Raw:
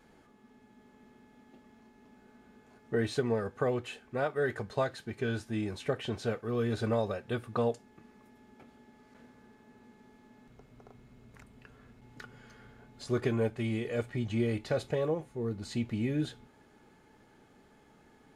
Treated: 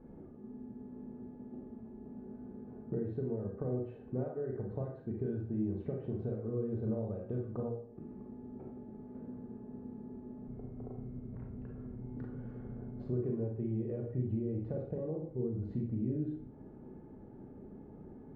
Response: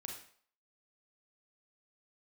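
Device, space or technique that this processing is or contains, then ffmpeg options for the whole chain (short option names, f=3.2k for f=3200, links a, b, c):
television next door: -filter_complex "[0:a]acompressor=threshold=-46dB:ratio=4,lowpass=430[a];[1:a]atrim=start_sample=2205[b];[a][b]afir=irnorm=-1:irlink=0,volume=15dB"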